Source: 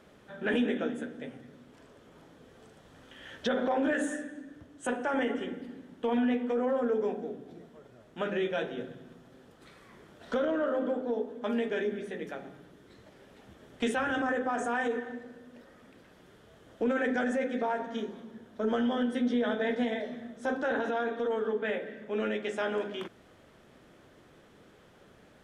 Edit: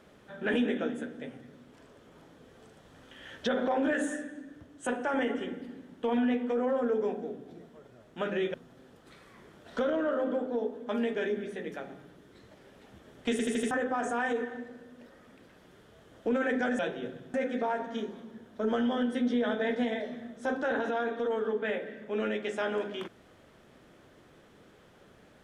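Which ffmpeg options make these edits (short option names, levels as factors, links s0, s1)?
-filter_complex "[0:a]asplit=9[s0][s1][s2][s3][s4][s5][s6][s7][s8];[s0]atrim=end=8.542[s9];[s1]atrim=start=9.088:end=13.942[s10];[s2]atrim=start=13.858:end=13.942[s11];[s3]atrim=start=13.858:end=13.942[s12];[s4]atrim=start=13.858:end=13.942[s13];[s5]atrim=start=13.858:end=13.942[s14];[s6]atrim=start=14.258:end=17.342[s15];[s7]atrim=start=8.538:end=9.092[s16];[s8]atrim=start=17.338[s17];[s9][s10]acrossfade=d=0.004:c1=hsin:c2=hsin[s18];[s18][s11]acrossfade=d=0.004:c1=hsin:c2=hsin[s19];[s19][s12]acrossfade=d=0.004:c1=hsin:c2=hsin[s20];[s20][s13]acrossfade=d=0.004:c1=hsin:c2=hsin[s21];[s21][s14]acrossfade=d=0.004:c1=hsin:c2=hsin[s22];[s22][s15]acrossfade=d=0.004:c1=hsin:c2=hsin[s23];[s23][s16]acrossfade=d=0.004:c1=hsin:c2=hsin[s24];[s24][s17]acrossfade=d=0.004:c1=hsin:c2=hsin"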